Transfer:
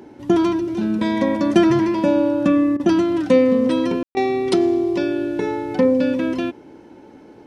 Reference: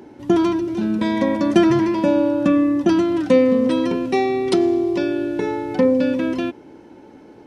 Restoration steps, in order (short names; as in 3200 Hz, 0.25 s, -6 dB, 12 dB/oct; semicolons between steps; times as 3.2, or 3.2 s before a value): room tone fill 4.03–4.15; interpolate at 2.77/4.14, 26 ms